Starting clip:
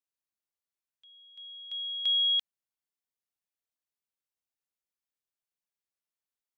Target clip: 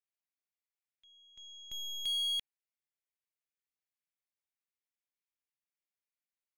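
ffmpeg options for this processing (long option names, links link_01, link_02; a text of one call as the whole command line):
ffmpeg -i in.wav -af "equalizer=frequency=2200:width=1.9:gain=9,aeval=exprs='0.0794*(cos(1*acos(clip(val(0)/0.0794,-1,1)))-cos(1*PI/2))+0.0112*(cos(8*acos(clip(val(0)/0.0794,-1,1)))-cos(8*PI/2))':channel_layout=same,volume=-9dB" out.wav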